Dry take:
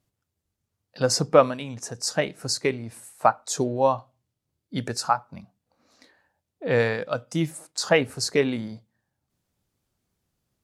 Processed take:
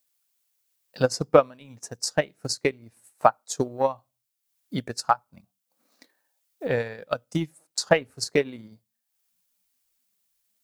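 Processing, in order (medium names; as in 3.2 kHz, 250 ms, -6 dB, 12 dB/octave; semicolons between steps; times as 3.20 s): spectral noise reduction 17 dB; added noise blue -65 dBFS; transient shaper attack +11 dB, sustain -8 dB; trim -8.5 dB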